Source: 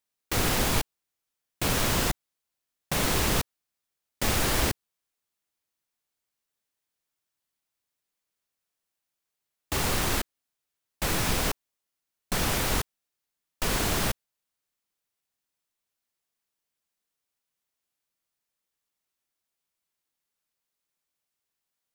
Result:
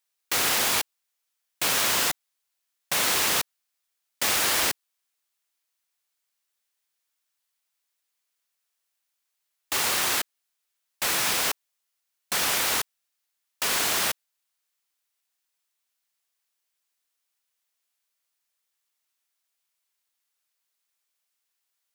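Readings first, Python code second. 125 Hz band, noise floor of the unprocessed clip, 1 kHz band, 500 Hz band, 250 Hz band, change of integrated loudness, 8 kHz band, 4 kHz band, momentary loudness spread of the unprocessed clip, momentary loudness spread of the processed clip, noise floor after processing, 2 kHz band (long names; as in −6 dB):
−14.5 dB, below −85 dBFS, +1.5 dB, −2.5 dB, −8.0 dB, +3.5 dB, +5.5 dB, +5.0 dB, 13 LU, 14 LU, −80 dBFS, +4.0 dB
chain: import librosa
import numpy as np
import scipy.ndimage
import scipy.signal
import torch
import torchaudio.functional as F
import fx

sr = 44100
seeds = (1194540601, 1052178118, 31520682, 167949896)

y = fx.highpass(x, sr, hz=1200.0, slope=6)
y = F.gain(torch.from_numpy(y), 5.5).numpy()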